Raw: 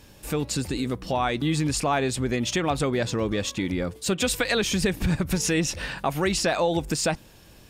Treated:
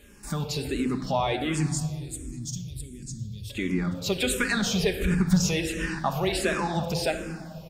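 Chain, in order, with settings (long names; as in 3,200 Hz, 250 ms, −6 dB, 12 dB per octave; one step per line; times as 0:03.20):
0:01.66–0:03.50: Chebyshev band-stop filter 100–7,800 Hz, order 2
far-end echo of a speakerphone 230 ms, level −16 dB
rectangular room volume 3,000 cubic metres, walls mixed, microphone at 1.3 metres
frequency shifter mixed with the dry sound −1.4 Hz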